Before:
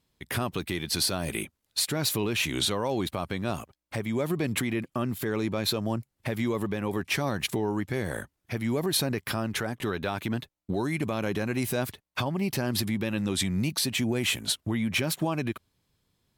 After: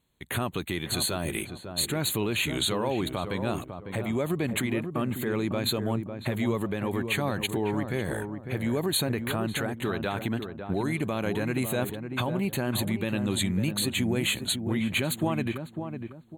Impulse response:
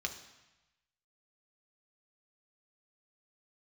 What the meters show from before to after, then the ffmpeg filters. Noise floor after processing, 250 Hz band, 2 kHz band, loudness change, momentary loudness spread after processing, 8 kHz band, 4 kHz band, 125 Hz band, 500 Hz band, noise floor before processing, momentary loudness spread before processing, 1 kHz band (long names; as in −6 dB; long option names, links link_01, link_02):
−45 dBFS, +1.0 dB, 0.0 dB, 0.0 dB, 6 LU, −0.5 dB, −1.0 dB, +1.0 dB, +1.0 dB, −80 dBFS, 7 LU, +0.5 dB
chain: -filter_complex "[0:a]asuperstop=centerf=5300:order=20:qfactor=2.9,asplit=2[link_01][link_02];[link_02]adelay=551,lowpass=frequency=1000:poles=1,volume=-6.5dB,asplit=2[link_03][link_04];[link_04]adelay=551,lowpass=frequency=1000:poles=1,volume=0.34,asplit=2[link_05][link_06];[link_06]adelay=551,lowpass=frequency=1000:poles=1,volume=0.34,asplit=2[link_07][link_08];[link_08]adelay=551,lowpass=frequency=1000:poles=1,volume=0.34[link_09];[link_03][link_05][link_07][link_09]amix=inputs=4:normalize=0[link_10];[link_01][link_10]amix=inputs=2:normalize=0"